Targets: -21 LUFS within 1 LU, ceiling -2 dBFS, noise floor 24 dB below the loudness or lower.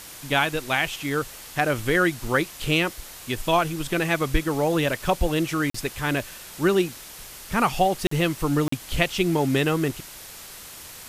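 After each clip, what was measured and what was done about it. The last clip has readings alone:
dropouts 3; longest dropout 44 ms; noise floor -42 dBFS; noise floor target -48 dBFS; loudness -24.0 LUFS; peak -6.0 dBFS; loudness target -21.0 LUFS
-> interpolate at 5.7/8.07/8.68, 44 ms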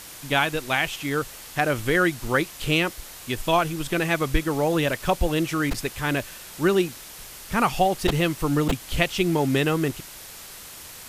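dropouts 0; noise floor -42 dBFS; noise floor target -48 dBFS
-> noise print and reduce 6 dB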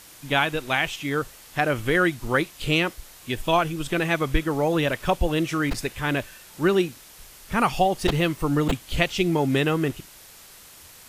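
noise floor -48 dBFS; loudness -24.0 LUFS; peak -6.0 dBFS; loudness target -21.0 LUFS
-> gain +3 dB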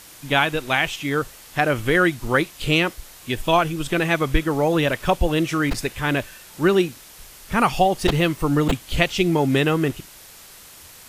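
loudness -21.0 LUFS; peak -3.0 dBFS; noise floor -45 dBFS

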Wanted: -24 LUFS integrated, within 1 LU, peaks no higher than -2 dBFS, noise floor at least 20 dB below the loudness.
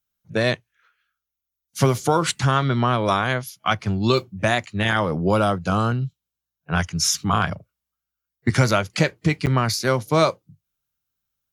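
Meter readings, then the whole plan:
dropouts 1; longest dropout 8.7 ms; loudness -21.5 LUFS; peak -4.0 dBFS; loudness target -24.0 LUFS
-> interpolate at 9.46, 8.7 ms; gain -2.5 dB

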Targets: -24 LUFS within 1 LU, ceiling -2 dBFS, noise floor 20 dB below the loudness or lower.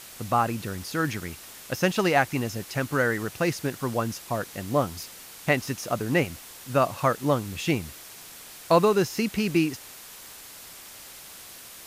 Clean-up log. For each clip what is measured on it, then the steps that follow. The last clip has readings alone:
noise floor -45 dBFS; noise floor target -47 dBFS; loudness -26.5 LUFS; peak -7.0 dBFS; loudness target -24.0 LUFS
-> denoiser 6 dB, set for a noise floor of -45 dBFS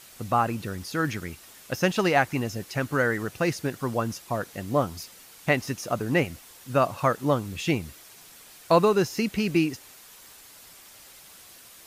noise floor -50 dBFS; loudness -26.5 LUFS; peak -7.5 dBFS; loudness target -24.0 LUFS
-> gain +2.5 dB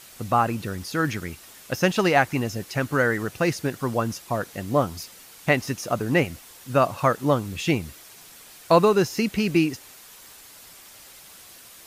loudness -24.0 LUFS; peak -5.0 dBFS; noise floor -47 dBFS

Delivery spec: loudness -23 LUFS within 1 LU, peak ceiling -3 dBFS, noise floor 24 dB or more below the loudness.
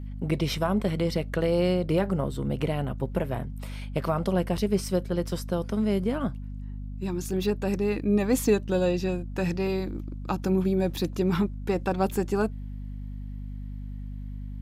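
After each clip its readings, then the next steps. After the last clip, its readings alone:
hum 50 Hz; harmonics up to 250 Hz; hum level -33 dBFS; loudness -27.5 LUFS; peak -10.5 dBFS; loudness target -23.0 LUFS
-> notches 50/100/150/200/250 Hz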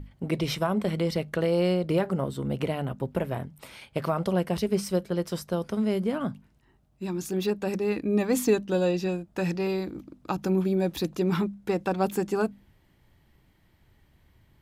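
hum none; loudness -28.0 LUFS; peak -11.5 dBFS; loudness target -23.0 LUFS
-> gain +5 dB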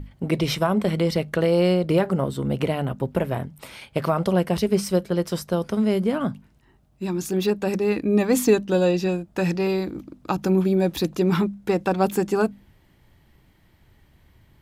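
loudness -23.0 LUFS; peak -6.5 dBFS; noise floor -59 dBFS

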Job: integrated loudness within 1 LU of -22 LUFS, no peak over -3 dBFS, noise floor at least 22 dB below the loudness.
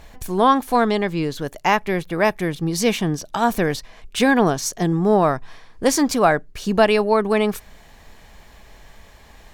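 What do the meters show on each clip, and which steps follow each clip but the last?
loudness -20.0 LUFS; peak -2.5 dBFS; loudness target -22.0 LUFS
-> gain -2 dB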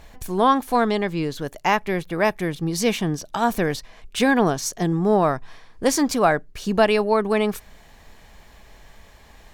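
loudness -22.0 LUFS; peak -4.5 dBFS; noise floor -49 dBFS

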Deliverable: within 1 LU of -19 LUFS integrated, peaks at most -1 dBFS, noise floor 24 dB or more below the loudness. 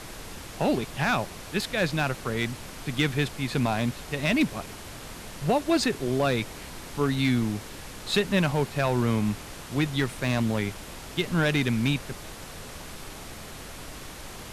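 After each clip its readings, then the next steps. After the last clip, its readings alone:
clipped 0.4%; flat tops at -16.0 dBFS; noise floor -42 dBFS; noise floor target -51 dBFS; loudness -27.0 LUFS; peak -16.0 dBFS; loudness target -19.0 LUFS
-> clip repair -16 dBFS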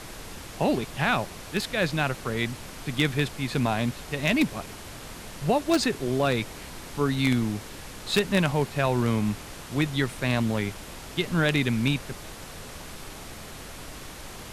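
clipped 0.0%; noise floor -42 dBFS; noise floor target -51 dBFS
-> noise print and reduce 9 dB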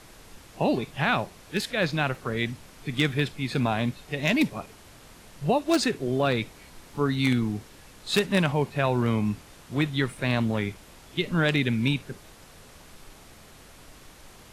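noise floor -50 dBFS; noise floor target -51 dBFS
-> noise print and reduce 6 dB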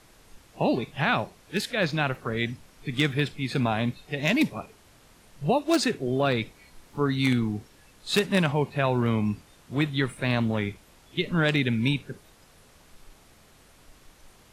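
noise floor -56 dBFS; loudness -26.5 LUFS; peak -7.0 dBFS; loudness target -19.0 LUFS
-> gain +7.5 dB; limiter -1 dBFS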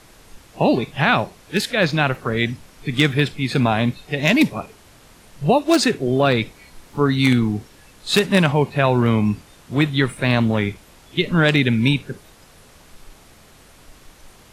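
loudness -19.0 LUFS; peak -1.0 dBFS; noise floor -49 dBFS

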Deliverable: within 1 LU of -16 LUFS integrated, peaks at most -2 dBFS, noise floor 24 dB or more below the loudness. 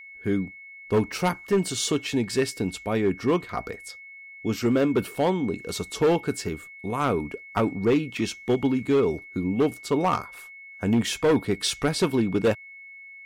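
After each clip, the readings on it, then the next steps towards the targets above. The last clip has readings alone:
clipped 1.6%; flat tops at -15.5 dBFS; steady tone 2200 Hz; tone level -42 dBFS; loudness -25.5 LUFS; peak -15.5 dBFS; loudness target -16.0 LUFS
-> clip repair -15.5 dBFS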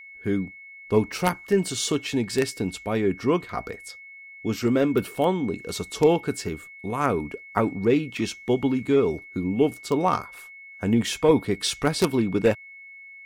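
clipped 0.0%; steady tone 2200 Hz; tone level -42 dBFS
-> notch 2200 Hz, Q 30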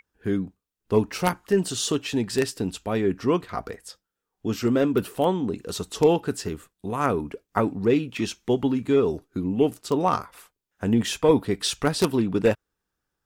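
steady tone none; loudness -25.0 LUFS; peak -6.5 dBFS; loudness target -16.0 LUFS
-> gain +9 dB; limiter -2 dBFS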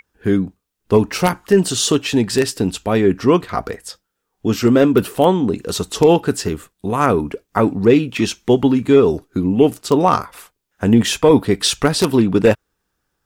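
loudness -16.5 LUFS; peak -2.0 dBFS; noise floor -75 dBFS

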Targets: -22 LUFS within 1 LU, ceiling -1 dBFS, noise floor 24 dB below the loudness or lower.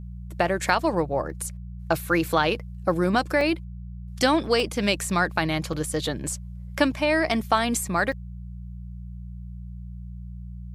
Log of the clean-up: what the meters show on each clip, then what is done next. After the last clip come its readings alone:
dropouts 4; longest dropout 2.4 ms; hum 60 Hz; harmonics up to 180 Hz; hum level -34 dBFS; loudness -24.5 LUFS; peak -6.5 dBFS; loudness target -22.0 LUFS
-> interpolate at 3.41/4.6/5.73/8.12, 2.4 ms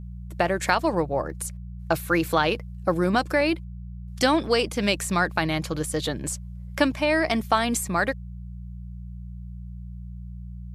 dropouts 0; hum 60 Hz; harmonics up to 180 Hz; hum level -34 dBFS
-> de-hum 60 Hz, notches 3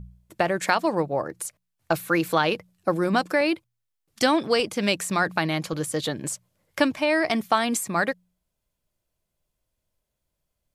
hum none; loudness -24.5 LUFS; peak -6.5 dBFS; loudness target -22.0 LUFS
-> gain +2.5 dB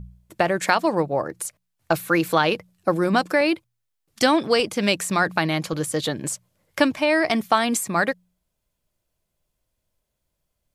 loudness -22.0 LUFS; peak -4.0 dBFS; noise floor -78 dBFS

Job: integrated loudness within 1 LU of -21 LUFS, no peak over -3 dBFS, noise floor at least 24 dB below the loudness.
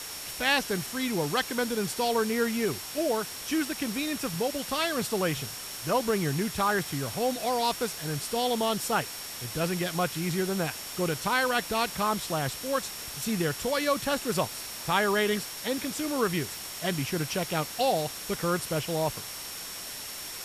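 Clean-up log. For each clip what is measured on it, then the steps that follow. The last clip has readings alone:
steady tone 5500 Hz; tone level -44 dBFS; noise floor -39 dBFS; noise floor target -53 dBFS; loudness -29.0 LUFS; peak -10.0 dBFS; loudness target -21.0 LUFS
-> notch 5500 Hz, Q 30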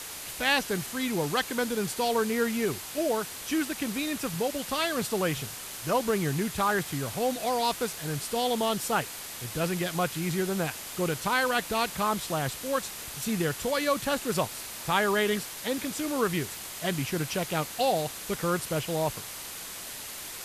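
steady tone none; noise floor -40 dBFS; noise floor target -53 dBFS
-> denoiser 13 dB, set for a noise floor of -40 dBFS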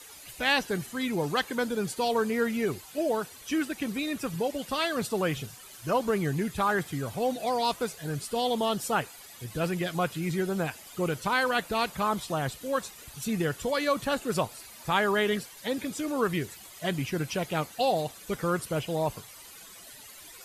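noise floor -49 dBFS; noise floor target -54 dBFS
-> denoiser 6 dB, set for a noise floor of -49 dBFS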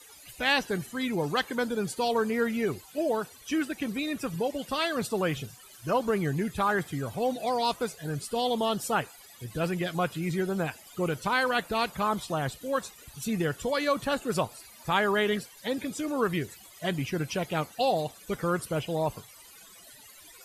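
noise floor -52 dBFS; noise floor target -54 dBFS
-> denoiser 6 dB, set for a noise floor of -52 dBFS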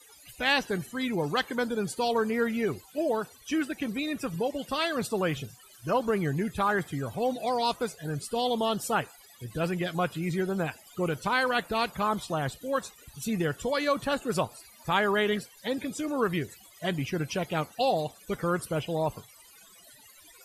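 noise floor -55 dBFS; loudness -29.5 LUFS; peak -10.5 dBFS; loudness target -21.0 LUFS
-> gain +8.5 dB; limiter -3 dBFS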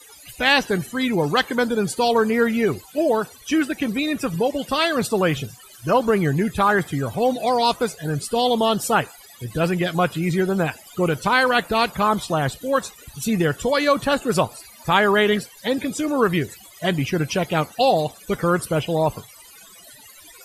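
loudness -21.0 LUFS; peak -3.0 dBFS; noise floor -46 dBFS

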